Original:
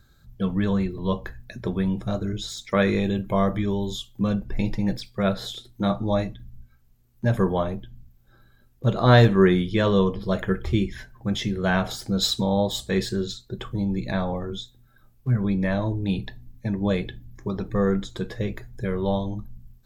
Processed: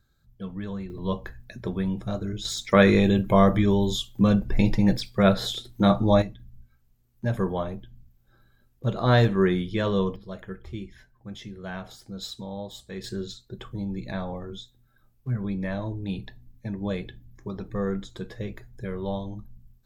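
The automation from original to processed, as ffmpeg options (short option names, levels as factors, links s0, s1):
-af "asetnsamples=n=441:p=0,asendcmd='0.9 volume volume -3dB;2.45 volume volume 4dB;6.22 volume volume -4.5dB;10.16 volume volume -13.5dB;13.04 volume volume -6dB',volume=0.299"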